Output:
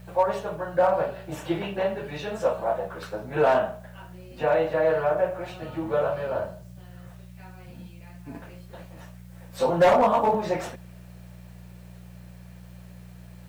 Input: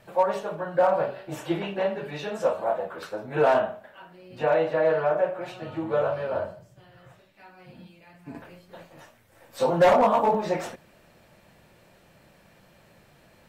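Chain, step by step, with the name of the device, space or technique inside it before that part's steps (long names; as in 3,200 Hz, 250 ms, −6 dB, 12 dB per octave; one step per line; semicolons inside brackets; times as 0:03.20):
video cassette with head-switching buzz (hum with harmonics 60 Hz, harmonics 3, −45 dBFS 0 dB per octave; white noise bed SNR 37 dB)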